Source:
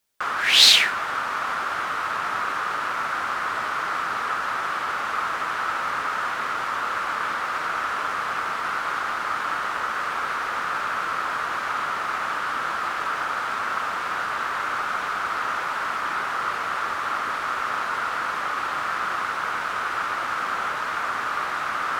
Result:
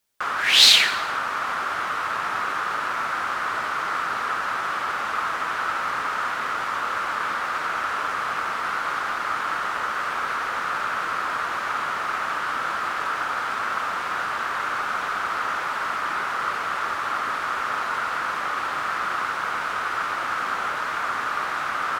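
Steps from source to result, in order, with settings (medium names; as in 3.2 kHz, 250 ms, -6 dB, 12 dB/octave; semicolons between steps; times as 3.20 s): on a send: frequency-shifting echo 85 ms, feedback 53%, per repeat +43 Hz, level -13.5 dB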